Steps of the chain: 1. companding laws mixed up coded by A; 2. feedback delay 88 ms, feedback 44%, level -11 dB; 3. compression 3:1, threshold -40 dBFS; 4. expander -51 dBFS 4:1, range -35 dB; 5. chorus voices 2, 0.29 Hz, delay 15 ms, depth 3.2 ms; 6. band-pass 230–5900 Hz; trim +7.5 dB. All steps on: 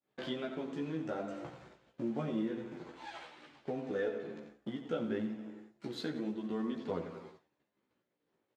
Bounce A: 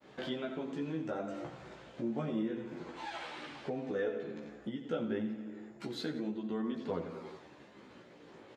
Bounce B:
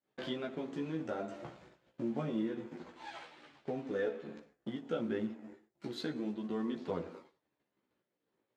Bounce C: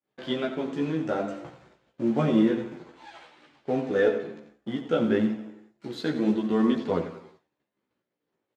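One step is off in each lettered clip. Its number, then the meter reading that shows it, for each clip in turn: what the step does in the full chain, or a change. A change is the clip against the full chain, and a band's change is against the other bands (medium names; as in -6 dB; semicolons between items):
1, distortion -22 dB; 2, momentary loudness spread change +1 LU; 3, mean gain reduction 7.0 dB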